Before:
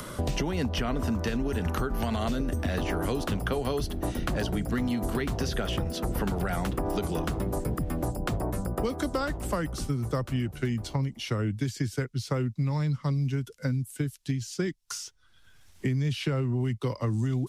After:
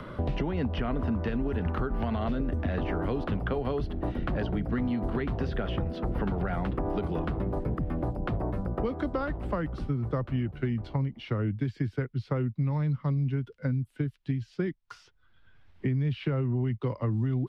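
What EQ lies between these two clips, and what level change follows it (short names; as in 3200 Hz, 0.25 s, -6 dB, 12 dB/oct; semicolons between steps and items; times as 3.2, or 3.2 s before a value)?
air absorption 400 m; 0.0 dB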